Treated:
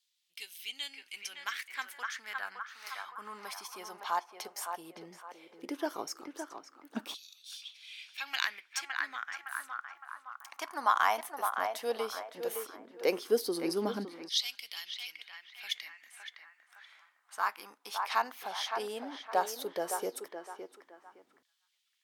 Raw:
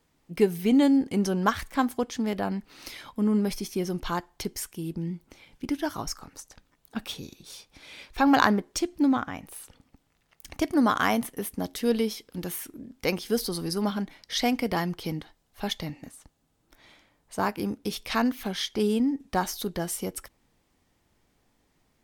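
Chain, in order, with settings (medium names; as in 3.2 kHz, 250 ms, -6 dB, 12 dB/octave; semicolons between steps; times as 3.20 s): band-passed feedback delay 563 ms, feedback 41%, band-pass 1.2 kHz, level -5 dB; LFO high-pass saw down 0.14 Hz 270–3800 Hz; trim -6.5 dB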